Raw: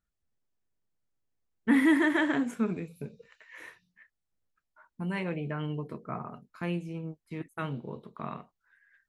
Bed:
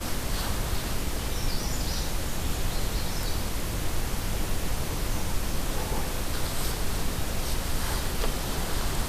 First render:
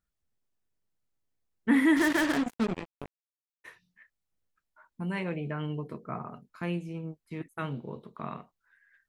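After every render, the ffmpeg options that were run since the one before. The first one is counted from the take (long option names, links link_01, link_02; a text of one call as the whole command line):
ffmpeg -i in.wav -filter_complex "[0:a]asplit=3[link_01][link_02][link_03];[link_01]afade=type=out:start_time=1.96:duration=0.02[link_04];[link_02]acrusher=bits=4:mix=0:aa=0.5,afade=type=in:start_time=1.96:duration=0.02,afade=type=out:start_time=3.64:duration=0.02[link_05];[link_03]afade=type=in:start_time=3.64:duration=0.02[link_06];[link_04][link_05][link_06]amix=inputs=3:normalize=0" out.wav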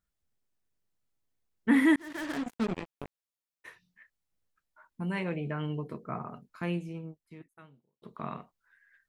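ffmpeg -i in.wav -filter_complex "[0:a]asplit=3[link_01][link_02][link_03];[link_01]atrim=end=1.96,asetpts=PTS-STARTPTS,afade=type=out:start_time=1.956:duration=0.004:curve=hsin[link_04];[link_02]atrim=start=1.96:end=8.02,asetpts=PTS-STARTPTS,afade=type=in:duration=0.84,afade=type=out:start_time=4.85:duration=1.21:curve=qua[link_05];[link_03]atrim=start=8.02,asetpts=PTS-STARTPTS,afade=type=in:duration=0.004:curve=hsin[link_06];[link_04][link_05][link_06]concat=n=3:v=0:a=1" out.wav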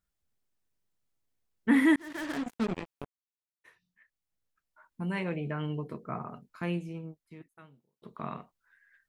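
ffmpeg -i in.wav -filter_complex "[0:a]asplit=2[link_01][link_02];[link_01]atrim=end=3.05,asetpts=PTS-STARTPTS,afade=type=out:start_time=3.046:duration=0.004:curve=hsin[link_03];[link_02]atrim=start=3.05,asetpts=PTS-STARTPTS,afade=type=in:duration=1.99[link_04];[link_03][link_04]concat=n=2:v=0:a=1" out.wav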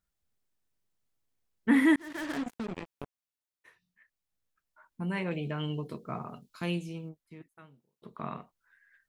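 ffmpeg -i in.wav -filter_complex "[0:a]asettb=1/sr,asplit=3[link_01][link_02][link_03];[link_01]atrim=end=2.534[link_04];[link_02]atrim=start=2.53:end=2.97,asetpts=PTS-STARTPTS,afade=type=in:duration=0.004:curve=qsin,afade=type=out:start_time=0.436:duration=0.004:curve=qsin,acompressor=threshold=-32dB:ratio=6:attack=3.2:release=140:knee=1:detection=peak[link_05];[link_03]atrim=start=2.966[link_06];[link_04][link_05]acrossfade=duration=0.004:curve1=hsin:curve2=qsin[link_07];[link_07][link_06]acrossfade=duration=0.004:curve1=qsin:curve2=hsin,asettb=1/sr,asplit=3[link_08][link_09][link_10];[link_08]atrim=end=5.314[link_11];[link_09]atrim=start=5.31:end=7.09,asetpts=PTS-STARTPTS,afade=type=in:duration=0.004:curve=qsin,afade=type=out:start_time=1.776:duration=0.004:curve=qsin,highshelf=frequency=2600:width_type=q:width=1.5:gain=8[link_12];[link_10]atrim=start=7.086[link_13];[link_11][link_12]acrossfade=duration=0.004:curve1=hsin:curve2=qsin[link_14];[link_14][link_13]acrossfade=duration=0.004:curve1=qsin:curve2=hsin" out.wav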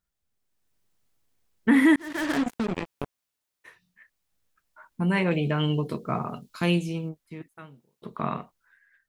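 ffmpeg -i in.wav -af "dynaudnorm=framelen=110:gausssize=11:maxgain=9dB,alimiter=limit=-10dB:level=0:latency=1:release=374" out.wav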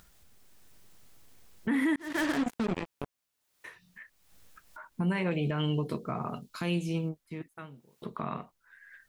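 ffmpeg -i in.wav -af "acompressor=mode=upward:threshold=-41dB:ratio=2.5,alimiter=limit=-20.5dB:level=0:latency=1:release=202" out.wav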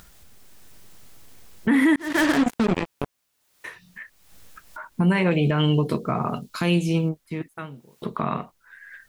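ffmpeg -i in.wav -af "volume=9.5dB" out.wav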